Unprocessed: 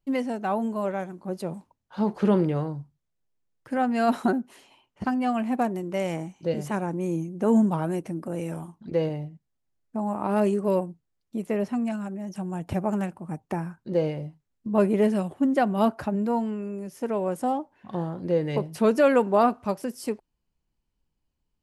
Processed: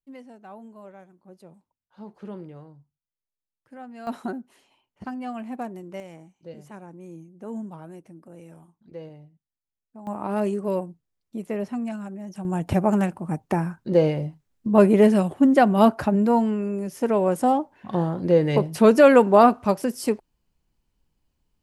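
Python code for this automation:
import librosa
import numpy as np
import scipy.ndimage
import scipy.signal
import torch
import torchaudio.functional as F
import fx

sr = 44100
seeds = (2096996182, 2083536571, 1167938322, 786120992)

y = fx.gain(x, sr, db=fx.steps((0.0, -16.5), (4.07, -7.5), (6.0, -14.0), (10.07, -2.0), (12.45, 6.0)))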